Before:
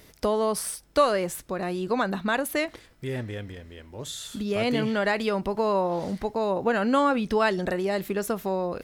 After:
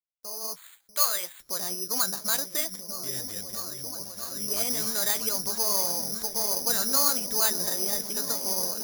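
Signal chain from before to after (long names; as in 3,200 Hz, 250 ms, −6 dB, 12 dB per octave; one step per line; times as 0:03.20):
fade in at the beginning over 1.24 s
0:00.56–0:01.40: meter weighting curve ITU-R 468
noise gate −42 dBFS, range −26 dB
parametric band 1,300 Hz +8.5 dB 2.5 octaves
in parallel at −11.5 dB: wave folding −21.5 dBFS
on the sum: flanger 1.5 Hz, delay 2.9 ms, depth 9.7 ms, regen +57%
echo whose low-pass opens from repeat to repeat 643 ms, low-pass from 200 Hz, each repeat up 1 octave, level −3 dB
bad sample-rate conversion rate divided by 8×, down filtered, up zero stuff
level −12.5 dB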